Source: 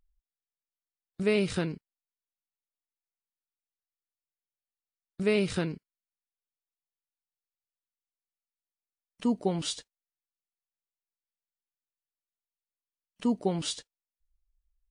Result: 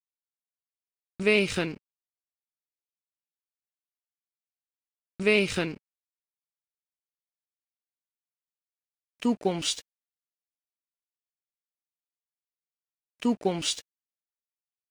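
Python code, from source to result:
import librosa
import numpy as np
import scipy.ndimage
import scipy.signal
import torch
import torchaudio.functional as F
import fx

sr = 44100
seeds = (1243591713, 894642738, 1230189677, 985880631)

y = np.sign(x) * np.maximum(np.abs(x) - 10.0 ** (-51.5 / 20.0), 0.0)
y = fx.graphic_eq_15(y, sr, hz=(160, 2500, 6300), db=(-5, 8, 4))
y = y * librosa.db_to_amplitude(3.0)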